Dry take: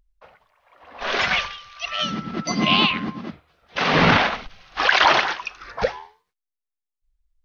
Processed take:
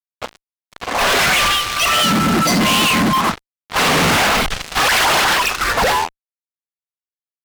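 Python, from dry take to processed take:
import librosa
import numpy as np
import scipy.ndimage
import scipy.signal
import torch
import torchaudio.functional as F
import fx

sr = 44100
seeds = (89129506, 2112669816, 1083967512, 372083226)

p1 = fx.graphic_eq(x, sr, hz=(125, 250, 500, 1000, 4000), db=(-11, -8, -6, 11, -9), at=(3.13, 3.79))
p2 = fx.over_compress(p1, sr, threshold_db=-30.0, ratio=-1.0)
p3 = p1 + (p2 * 10.0 ** (-2.0 / 20.0))
y = fx.fuzz(p3, sr, gain_db=36.0, gate_db=-36.0)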